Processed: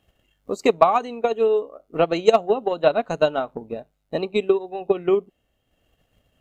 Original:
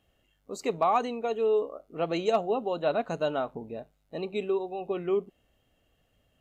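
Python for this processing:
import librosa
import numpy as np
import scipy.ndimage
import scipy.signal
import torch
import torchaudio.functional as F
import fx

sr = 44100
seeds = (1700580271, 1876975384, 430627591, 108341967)

y = fx.transient(x, sr, attack_db=10, sustain_db=-5)
y = y * librosa.db_to_amplitude(3.5)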